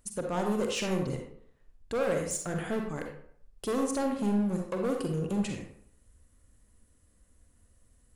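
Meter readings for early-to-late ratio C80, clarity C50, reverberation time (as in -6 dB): 7.5 dB, 3.5 dB, 0.60 s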